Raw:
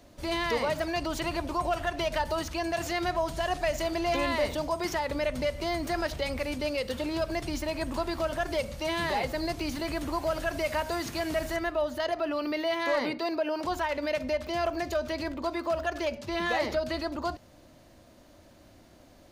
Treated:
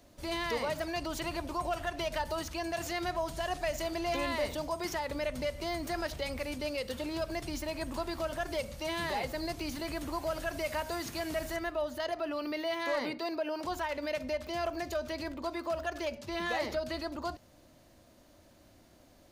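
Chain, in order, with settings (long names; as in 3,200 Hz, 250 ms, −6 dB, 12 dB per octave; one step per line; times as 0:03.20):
high-shelf EQ 6,500 Hz +5 dB
level −5 dB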